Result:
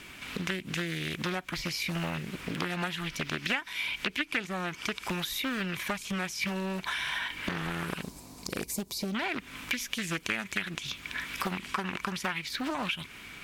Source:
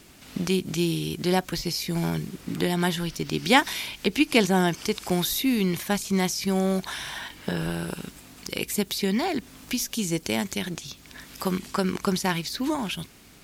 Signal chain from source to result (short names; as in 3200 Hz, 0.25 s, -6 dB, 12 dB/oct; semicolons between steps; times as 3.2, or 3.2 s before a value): band shelf 2100 Hz +8.5 dB, from 8.01 s -9 dB, from 9.14 s +10 dB; compressor 12:1, threshold -30 dBFS, peak gain reduction 23 dB; small resonant body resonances 1000/2300 Hz, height 9 dB, ringing for 30 ms; Doppler distortion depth 0.82 ms